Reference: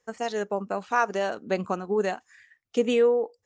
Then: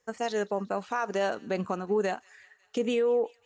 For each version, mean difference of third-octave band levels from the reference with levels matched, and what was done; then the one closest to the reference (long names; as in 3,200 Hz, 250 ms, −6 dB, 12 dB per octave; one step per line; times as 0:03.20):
2.5 dB: brickwall limiter −19 dBFS, peak gain reduction 8.5 dB
on a send: delay with a high-pass on its return 183 ms, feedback 73%, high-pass 1,800 Hz, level −22.5 dB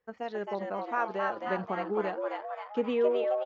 6.0 dB: high-frequency loss of the air 290 metres
echo with shifted repeats 266 ms, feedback 56%, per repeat +140 Hz, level −3.5 dB
level −5.5 dB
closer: first